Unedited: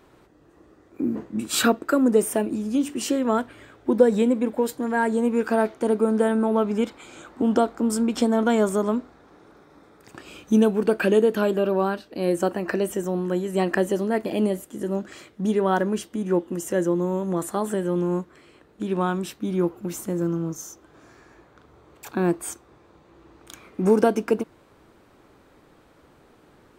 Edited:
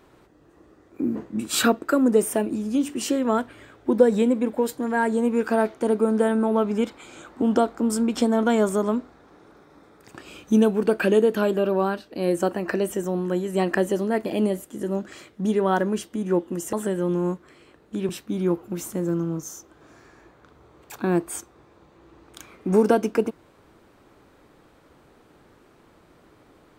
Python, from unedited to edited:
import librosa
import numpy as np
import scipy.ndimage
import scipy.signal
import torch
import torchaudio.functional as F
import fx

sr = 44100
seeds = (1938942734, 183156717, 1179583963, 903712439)

y = fx.edit(x, sr, fx.cut(start_s=16.73, length_s=0.87),
    fx.cut(start_s=18.96, length_s=0.26), tone=tone)